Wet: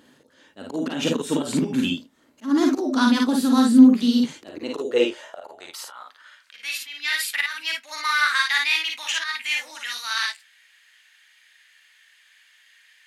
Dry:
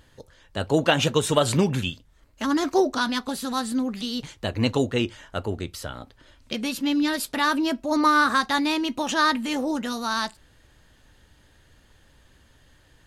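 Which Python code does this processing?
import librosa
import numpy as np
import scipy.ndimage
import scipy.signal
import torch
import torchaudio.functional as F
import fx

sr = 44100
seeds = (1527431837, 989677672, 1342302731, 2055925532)

y = fx.auto_swell(x, sr, attack_ms=256.0)
y = fx.filter_sweep_highpass(y, sr, from_hz=250.0, to_hz=2100.0, start_s=4.29, end_s=6.77, q=3.2)
y = fx.echo_multitap(y, sr, ms=(42, 54, 76), db=(-6.0, -3.0, -16.0))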